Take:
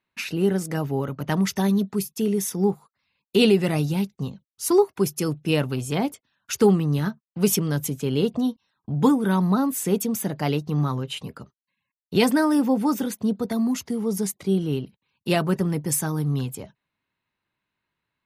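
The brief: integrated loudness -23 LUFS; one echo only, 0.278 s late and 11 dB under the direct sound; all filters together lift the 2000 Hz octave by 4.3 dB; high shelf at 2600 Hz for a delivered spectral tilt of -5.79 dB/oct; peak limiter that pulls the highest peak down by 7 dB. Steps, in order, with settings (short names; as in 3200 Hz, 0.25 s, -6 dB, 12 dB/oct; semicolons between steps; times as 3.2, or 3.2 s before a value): bell 2000 Hz +7.5 dB; high shelf 2600 Hz -3.5 dB; limiter -12.5 dBFS; echo 0.278 s -11 dB; gain +1.5 dB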